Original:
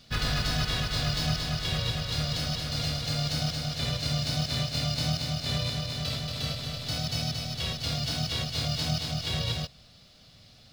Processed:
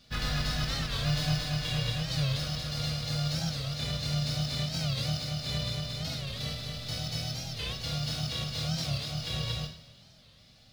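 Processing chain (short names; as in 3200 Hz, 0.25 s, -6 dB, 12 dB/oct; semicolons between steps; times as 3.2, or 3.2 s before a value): 1.05–2.34 comb 6.8 ms, depth 59%; two-slope reverb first 0.53 s, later 2.4 s, from -18 dB, DRR 2 dB; record warp 45 rpm, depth 160 cents; gain -5.5 dB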